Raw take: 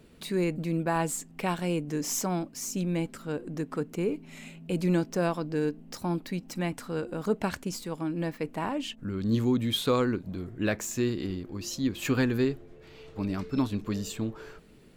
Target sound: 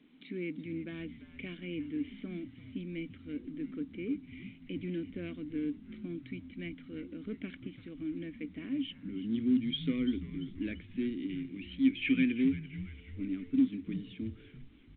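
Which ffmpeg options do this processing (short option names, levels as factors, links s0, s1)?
-filter_complex "[0:a]asettb=1/sr,asplit=3[s0][s1][s2];[s0]atrim=end=11.294[s3];[s1]atrim=start=11.29:end=12.32,asetpts=PTS-STARTPTS,afade=t=in:d=0.004:c=qsin,afade=t=out:st=1.026:d=0.004:c=qsin,equalizer=f=2400:w=1.7:g=12.5[s4];[s2]atrim=start=12.316[s5];[s3][s4]acrossfade=d=0.004:c1=hsin:c2=qsin[s6];[s6][s5]acrossfade=d=0.004:c1=qsin:c2=hsin,asoftclip=type=hard:threshold=0.0944,asplit=3[s7][s8][s9];[s7]bandpass=f=270:t=q:w=8,volume=1[s10];[s8]bandpass=f=2290:t=q:w=8,volume=0.501[s11];[s9]bandpass=f=3010:t=q:w=8,volume=0.355[s12];[s10][s11][s12]amix=inputs=3:normalize=0,asplit=6[s13][s14][s15][s16][s17][s18];[s14]adelay=340,afreqshift=-88,volume=0.2[s19];[s15]adelay=680,afreqshift=-176,volume=0.0977[s20];[s16]adelay=1020,afreqshift=-264,volume=0.0479[s21];[s17]adelay=1360,afreqshift=-352,volume=0.0234[s22];[s18]adelay=1700,afreqshift=-440,volume=0.0115[s23];[s13][s19][s20][s21][s22][s23]amix=inputs=6:normalize=0,volume=1.5" -ar 8000 -c:a pcm_alaw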